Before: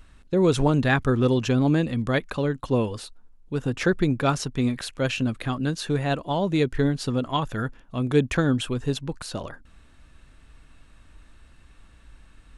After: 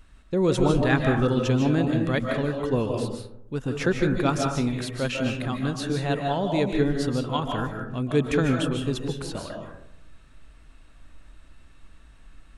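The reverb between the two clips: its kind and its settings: digital reverb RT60 0.77 s, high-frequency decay 0.35×, pre-delay 0.11 s, DRR 2 dB; gain -2.5 dB

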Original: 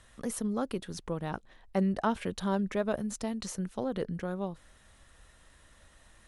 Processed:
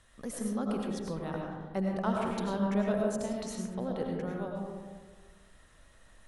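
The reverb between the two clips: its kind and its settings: digital reverb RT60 1.5 s, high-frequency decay 0.3×, pre-delay 60 ms, DRR -1 dB; gain -4.5 dB

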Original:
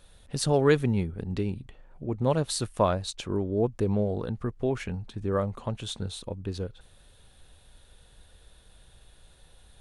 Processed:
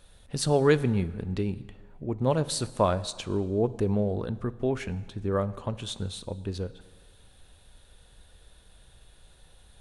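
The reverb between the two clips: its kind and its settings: plate-style reverb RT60 1.5 s, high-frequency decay 0.85×, DRR 15.5 dB

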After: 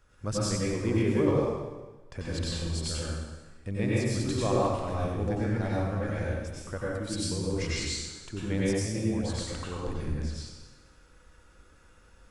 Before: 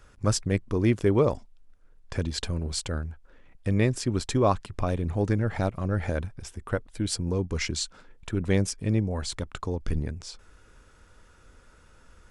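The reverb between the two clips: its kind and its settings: plate-style reverb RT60 1.2 s, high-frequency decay 0.95×, pre-delay 80 ms, DRR -7 dB; gain -9.5 dB

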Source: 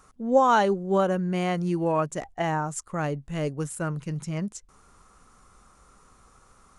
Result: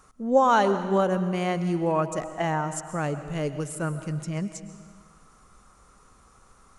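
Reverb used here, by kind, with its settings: digital reverb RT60 1.6 s, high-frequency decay 0.9×, pre-delay 85 ms, DRR 10.5 dB

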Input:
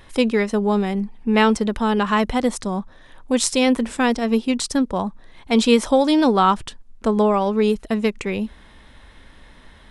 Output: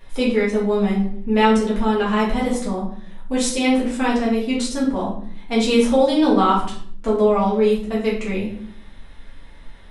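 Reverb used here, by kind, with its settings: shoebox room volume 76 m³, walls mixed, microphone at 1.7 m; gain -8.5 dB

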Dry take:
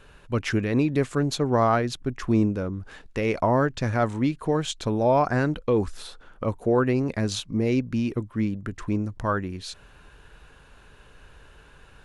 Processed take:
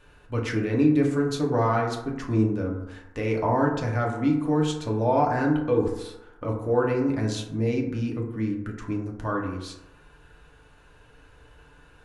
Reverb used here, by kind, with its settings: FDN reverb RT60 0.92 s, low-frequency decay 0.9×, high-frequency decay 0.35×, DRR -1.5 dB; gain -6 dB

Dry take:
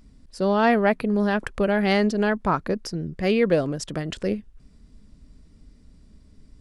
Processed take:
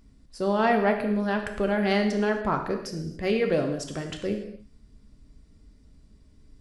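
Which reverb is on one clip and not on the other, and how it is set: non-linear reverb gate 0.31 s falling, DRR 3.5 dB; gain -4.5 dB

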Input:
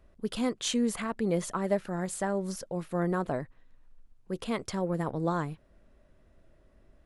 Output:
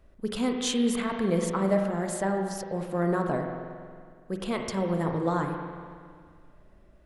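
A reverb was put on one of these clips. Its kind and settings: spring tank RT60 2 s, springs 36/46 ms, chirp 65 ms, DRR 3 dB; gain +1.5 dB

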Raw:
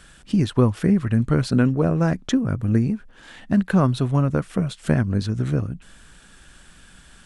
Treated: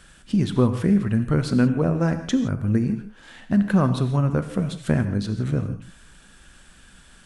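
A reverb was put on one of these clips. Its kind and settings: non-linear reverb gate 0.19 s flat, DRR 8.5 dB; gain -2 dB

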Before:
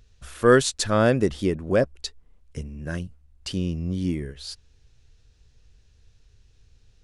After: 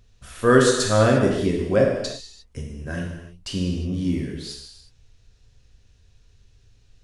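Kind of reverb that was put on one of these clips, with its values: non-linear reverb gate 0.38 s falling, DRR -1.5 dB; gain -1.5 dB

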